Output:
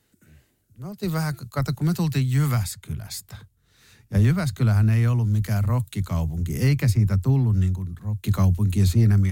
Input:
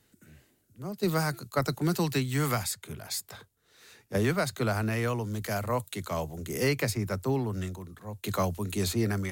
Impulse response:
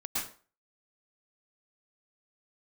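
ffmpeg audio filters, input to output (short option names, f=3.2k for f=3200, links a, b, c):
-af "asubboost=boost=9:cutoff=160,acontrast=31,volume=-5.5dB"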